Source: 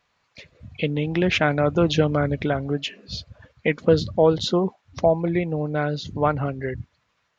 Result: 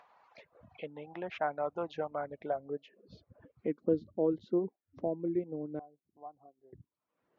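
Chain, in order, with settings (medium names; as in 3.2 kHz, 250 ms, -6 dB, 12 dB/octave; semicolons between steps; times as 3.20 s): band-pass sweep 820 Hz -> 330 Hz, 2.20–3.37 s; upward compressor, threshold -40 dBFS; reverb removal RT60 0.57 s; 5.79–6.73 s: cascade formant filter a; trim -6 dB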